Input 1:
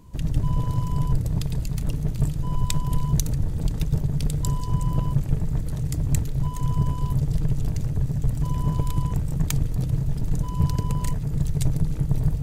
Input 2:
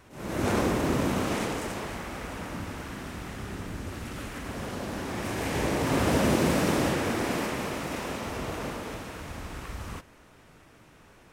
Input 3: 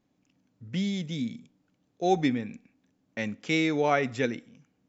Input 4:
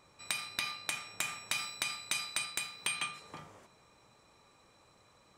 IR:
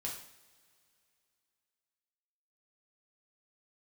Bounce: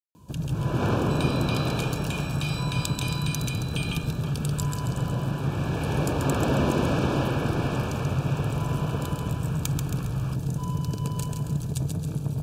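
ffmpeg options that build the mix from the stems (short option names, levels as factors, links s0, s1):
-filter_complex "[0:a]highpass=110,acompressor=threshold=0.0562:ratio=6,adelay=150,volume=1.06,asplit=2[s0][s1];[s1]volume=0.596[s2];[1:a]lowpass=4000,adelay=350,volume=0.944[s3];[3:a]equalizer=f=3100:w=0.85:g=12,alimiter=limit=0.0944:level=0:latency=1:release=229,adelay=900,volume=0.794[s4];[s2]aecho=0:1:136|272|408|544|680|816|952:1|0.47|0.221|0.104|0.0488|0.0229|0.0108[s5];[s0][s3][s4][s5]amix=inputs=4:normalize=0,asuperstop=centerf=2000:order=12:qfactor=4"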